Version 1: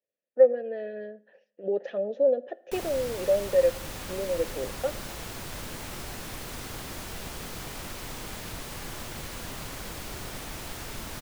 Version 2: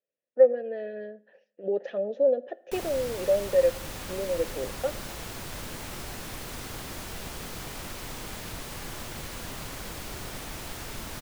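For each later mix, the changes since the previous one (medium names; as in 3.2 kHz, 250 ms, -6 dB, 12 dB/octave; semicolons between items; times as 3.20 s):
no change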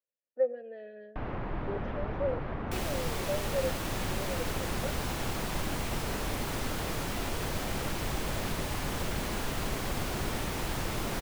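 speech -10.5 dB; first sound: unmuted; master: add peaking EQ 2.5 kHz +3 dB 1.6 oct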